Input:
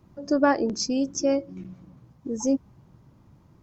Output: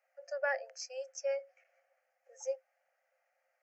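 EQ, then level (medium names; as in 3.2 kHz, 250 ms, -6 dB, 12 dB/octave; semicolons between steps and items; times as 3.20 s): rippled Chebyshev high-pass 510 Hz, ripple 9 dB; peaking EQ 3.5 kHz +4.5 dB 1.4 oct; static phaser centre 1 kHz, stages 6; -3.5 dB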